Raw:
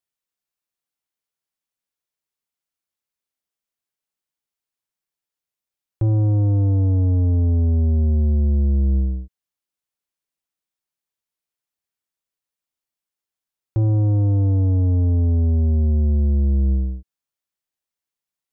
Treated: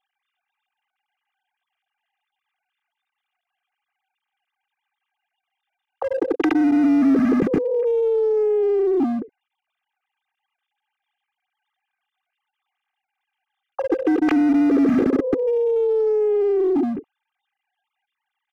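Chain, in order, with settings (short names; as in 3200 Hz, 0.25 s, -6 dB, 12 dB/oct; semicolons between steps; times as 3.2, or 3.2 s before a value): sine-wave speech; in parallel at -5 dB: wavefolder -21 dBFS; on the sum: comb 2.5 ms, depth 64%; compressor 3:1, threshold -18 dBFS, peak gain reduction 6 dB; dynamic EQ 270 Hz, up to +4 dB, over -32 dBFS, Q 7.2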